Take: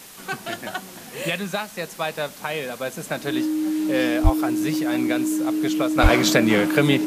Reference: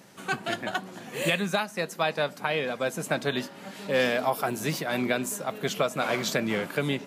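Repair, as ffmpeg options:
-filter_complex "[0:a]bandreject=f=310:w=30,asplit=3[a][b][c];[a]afade=t=out:st=4.23:d=0.02[d];[b]highpass=f=140:w=0.5412,highpass=f=140:w=1.3066,afade=t=in:st=4.23:d=0.02,afade=t=out:st=4.35:d=0.02[e];[c]afade=t=in:st=4.35:d=0.02[f];[d][e][f]amix=inputs=3:normalize=0,asplit=3[g][h][i];[g]afade=t=out:st=6.02:d=0.02[j];[h]highpass=f=140:w=0.5412,highpass=f=140:w=1.3066,afade=t=in:st=6.02:d=0.02,afade=t=out:st=6.14:d=0.02[k];[i]afade=t=in:st=6.14:d=0.02[l];[j][k][l]amix=inputs=3:normalize=0,afwtdn=0.0079,asetnsamples=n=441:p=0,asendcmd='5.98 volume volume -9dB',volume=0dB"

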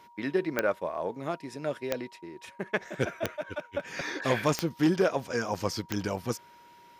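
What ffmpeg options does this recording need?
-af "adeclick=t=4,bandreject=f=950:w=30"

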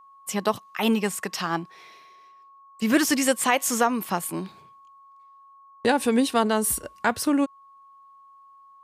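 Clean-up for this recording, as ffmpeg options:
-af "bandreject=f=1.1k:w=30"

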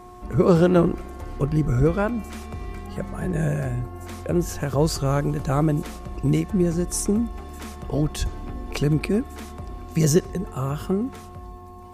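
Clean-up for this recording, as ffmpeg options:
-af "bandreject=f=360.3:t=h:w=4,bandreject=f=720.6:t=h:w=4,bandreject=f=1.0809k:t=h:w=4"

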